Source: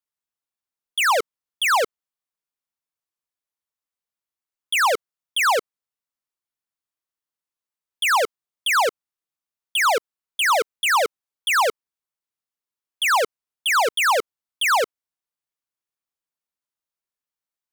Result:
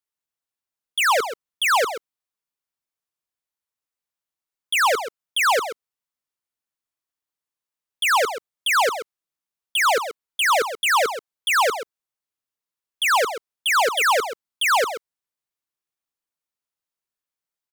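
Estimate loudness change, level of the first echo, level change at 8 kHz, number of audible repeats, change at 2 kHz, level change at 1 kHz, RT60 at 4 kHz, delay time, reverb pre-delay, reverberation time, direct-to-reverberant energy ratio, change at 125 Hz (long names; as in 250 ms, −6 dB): +0.5 dB, −10.5 dB, +0.5 dB, 1, +0.5 dB, +0.5 dB, no reverb audible, 131 ms, no reverb audible, no reverb audible, no reverb audible, can't be measured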